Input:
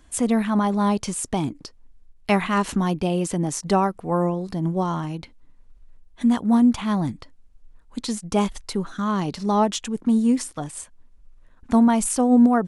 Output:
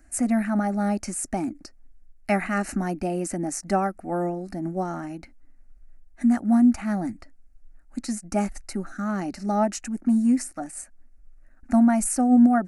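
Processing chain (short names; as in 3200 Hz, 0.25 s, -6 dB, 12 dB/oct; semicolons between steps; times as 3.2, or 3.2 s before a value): fixed phaser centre 680 Hz, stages 8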